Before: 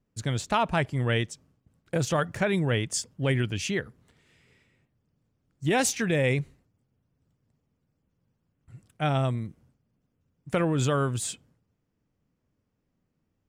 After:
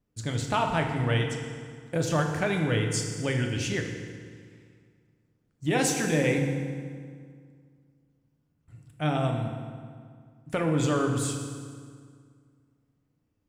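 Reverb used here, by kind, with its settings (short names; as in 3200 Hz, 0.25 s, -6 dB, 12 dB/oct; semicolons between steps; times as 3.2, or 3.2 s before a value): FDN reverb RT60 2 s, low-frequency decay 1.2×, high-frequency decay 0.75×, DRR 2 dB; gain -2.5 dB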